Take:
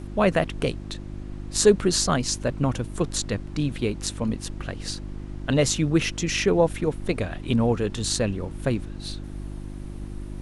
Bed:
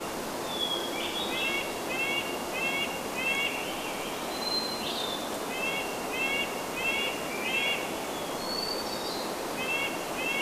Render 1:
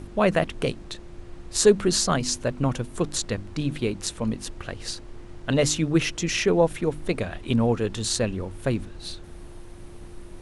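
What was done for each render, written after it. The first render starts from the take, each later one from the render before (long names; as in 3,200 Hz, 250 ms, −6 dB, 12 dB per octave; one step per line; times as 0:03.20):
hum removal 50 Hz, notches 6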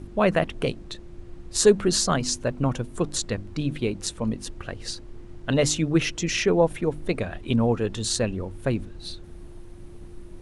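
broadband denoise 6 dB, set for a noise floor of −43 dBFS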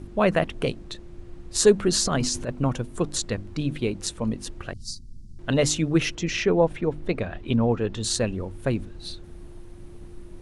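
0:02.05–0:02.49: transient designer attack −11 dB, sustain +7 dB
0:04.73–0:05.39: elliptic band-stop filter 220–4,800 Hz
0:06.15–0:08.03: high-frequency loss of the air 84 metres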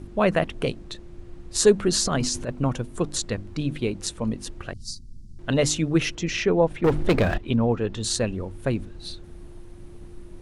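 0:06.84–0:07.38: leveller curve on the samples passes 3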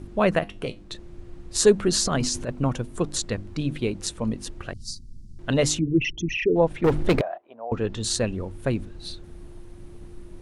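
0:00.39–0:00.91: tuned comb filter 100 Hz, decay 0.23 s
0:05.79–0:06.56: spectral envelope exaggerated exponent 3
0:07.21–0:07.72: four-pole ladder band-pass 730 Hz, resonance 70%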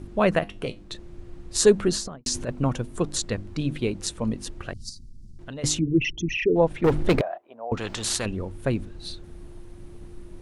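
0:01.83–0:02.26: fade out and dull
0:04.89–0:05.64: downward compressor 3 to 1, threshold −38 dBFS
0:07.77–0:08.26: every bin compressed towards the loudest bin 2 to 1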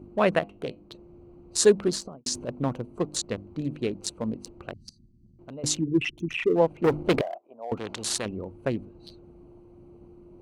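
adaptive Wiener filter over 25 samples
high-pass filter 230 Hz 6 dB per octave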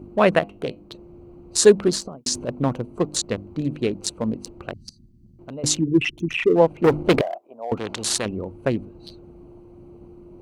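level +5.5 dB
brickwall limiter −1 dBFS, peak gain reduction 2.5 dB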